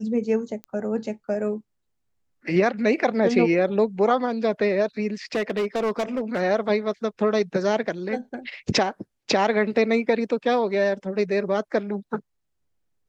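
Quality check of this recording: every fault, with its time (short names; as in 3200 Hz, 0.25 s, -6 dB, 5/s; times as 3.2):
0.64 pop -22 dBFS
5.35–6.41 clipped -20 dBFS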